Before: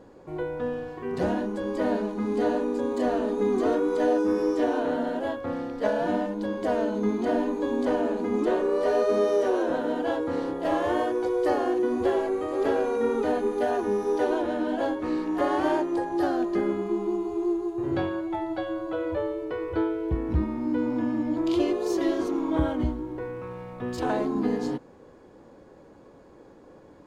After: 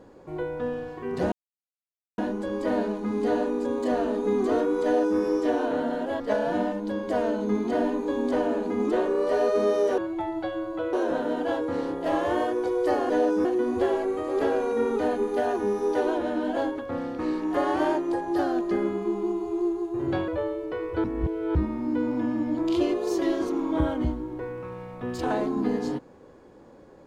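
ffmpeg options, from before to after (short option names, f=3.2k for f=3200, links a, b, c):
-filter_complex "[0:a]asplit=12[a][b][c][d][e][f][g][h][i][j][k][l];[a]atrim=end=1.32,asetpts=PTS-STARTPTS,afade=t=out:st=1.316:d=0.004:c=hsin,apad=pad_dur=0.86[m];[b]atrim=start=1.32:end=5.342,asetpts=PTS-STARTPTS,afade=t=in:d=0.004:c=hsin[n];[c]atrim=start=5.738:end=9.522[o];[d]atrim=start=18.118:end=19.072[p];[e]atrim=start=9.518:end=11.692[q];[f]atrim=start=3.978:end=4.332[r];[g]atrim=start=11.688:end=15.032[s];[h]atrim=start=5.338:end=5.742[t];[i]atrim=start=15.028:end=18.122[u];[j]atrim=start=19.068:end=19.832[v];[k]atrim=start=19.828:end=20.342,asetpts=PTS-STARTPTS,areverse[w];[l]atrim=start=20.338[x];[m][n]concat=n=2:v=0:a=1[y];[y][o]acrossfade=d=0.004:c1=hsin:c2=hsin[z];[z][p]acrossfade=d=0.004:c1=hsin:c2=hsin[aa];[aa][q]acrossfade=d=0.004:c1=hsin:c2=hsin[ab];[ab][r]acrossfade=d=0.004:c1=hsin:c2=hsin[ac];[ac][s]acrossfade=d=0.004:c1=hsin:c2=hsin[ad];[ad][t]acrossfade=d=0.004:c1=hsin:c2=hsin[ae];[ae][u]acrossfade=d=0.004:c1=hsin:c2=hsin[af];[af][v]acrossfade=d=0.004:c1=hsin:c2=hsin[ag];[ag][w]acrossfade=d=0.004:c1=hsin:c2=hsin[ah];[ah][x]acrossfade=d=0.004:c1=hsin:c2=hsin"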